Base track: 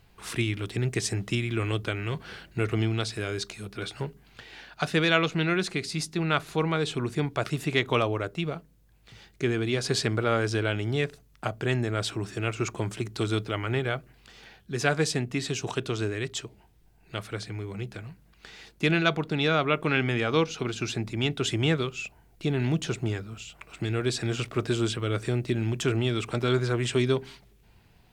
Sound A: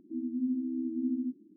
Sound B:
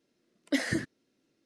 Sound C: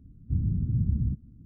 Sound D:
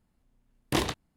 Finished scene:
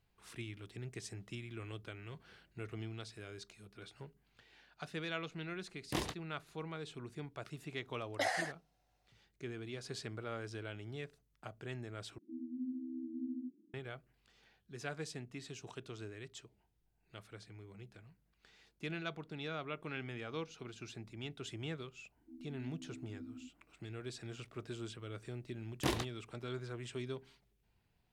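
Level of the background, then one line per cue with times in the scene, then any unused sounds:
base track -18 dB
5.20 s: add D -10.5 dB
7.67 s: add B -5 dB + resonant high-pass 750 Hz, resonance Q 8.3
12.18 s: replace with A -10 dB
22.17 s: add A -18 dB
25.11 s: add D -8 dB
not used: C

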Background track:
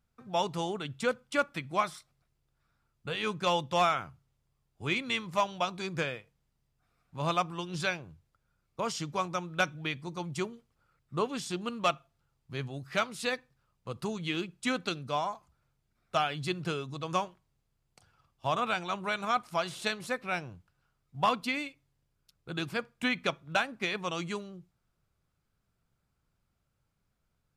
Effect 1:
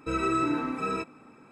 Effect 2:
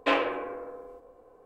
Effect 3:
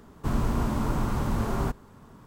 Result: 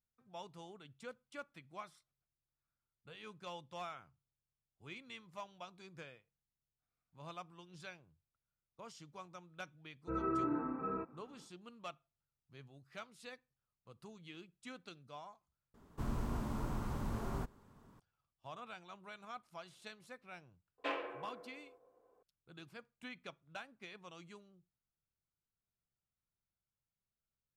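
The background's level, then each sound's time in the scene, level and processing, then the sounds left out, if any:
background track -19.5 dB
10.01 s: add 1 -8.5 dB, fades 0.10 s + low-pass 1.5 kHz 24 dB/octave
15.74 s: replace with 3 -12.5 dB
20.78 s: add 2 -14 dB + high-pass 250 Hz 6 dB/octave

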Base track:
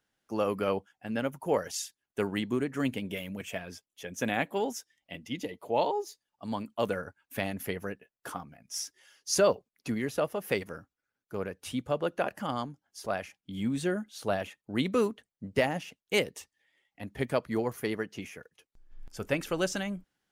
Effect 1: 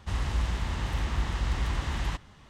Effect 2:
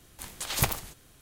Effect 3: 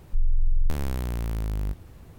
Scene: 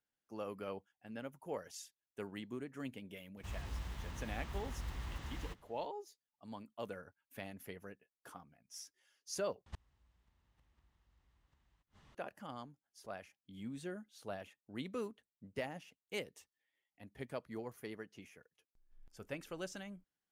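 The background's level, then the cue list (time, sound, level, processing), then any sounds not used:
base track -14.5 dB
3.37 s: add 1 -14.5 dB + block-companded coder 5-bit
9.66 s: replace with 1 -10.5 dB + inverted gate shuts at -23 dBFS, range -35 dB
not used: 2, 3

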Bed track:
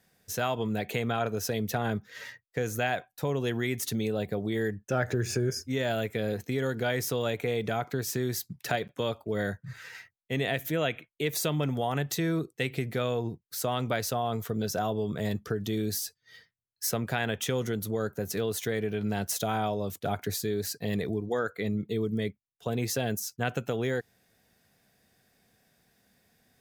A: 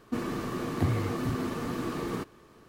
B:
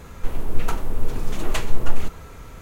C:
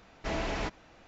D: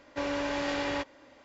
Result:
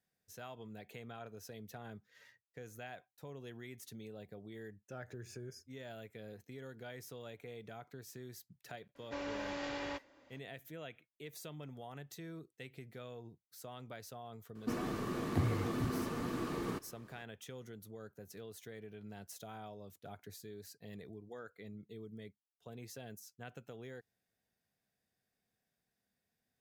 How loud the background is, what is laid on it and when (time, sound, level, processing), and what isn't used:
bed track -19.5 dB
8.95 s: add D -9.5 dB
14.55 s: add A -5.5 dB
not used: B, C

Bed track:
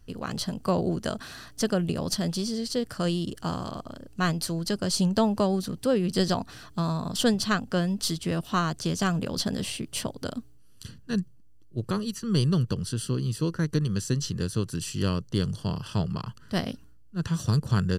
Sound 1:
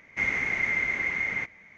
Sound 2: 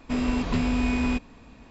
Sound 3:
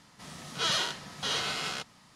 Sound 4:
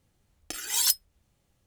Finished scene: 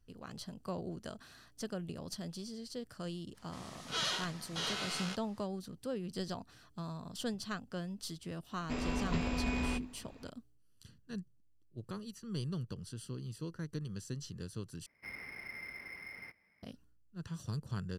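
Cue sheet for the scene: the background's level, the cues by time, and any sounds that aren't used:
bed track -15 dB
3.33 s: add 3 -6.5 dB, fades 0.05 s
8.60 s: add 2 -7.5 dB + hum notches 50/100/150/200/250/300/350 Hz
14.86 s: replace with 1 -17.5 dB + decimation joined by straight lines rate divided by 6×
not used: 4

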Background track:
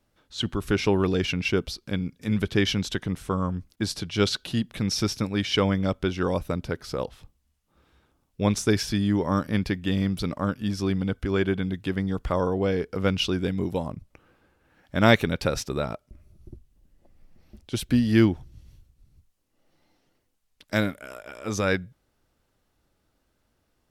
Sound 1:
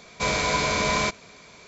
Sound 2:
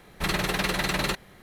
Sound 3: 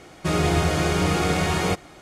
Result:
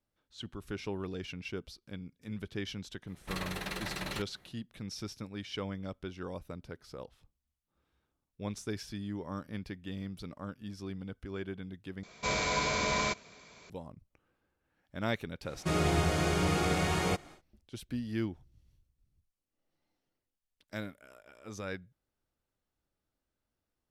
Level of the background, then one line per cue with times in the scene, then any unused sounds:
background track -15.5 dB
3.07 s: add 2 -12 dB
12.03 s: replace with 1 -7 dB
15.41 s: add 3 -7.5 dB, fades 0.10 s

